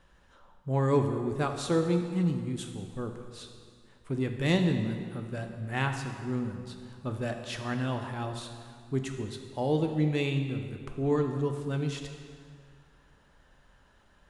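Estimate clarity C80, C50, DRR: 7.5 dB, 6.5 dB, 4.5 dB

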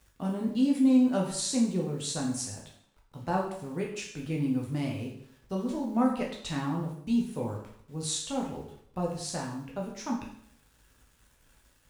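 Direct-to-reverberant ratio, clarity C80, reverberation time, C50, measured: −1.5 dB, 8.5 dB, 0.65 s, 5.0 dB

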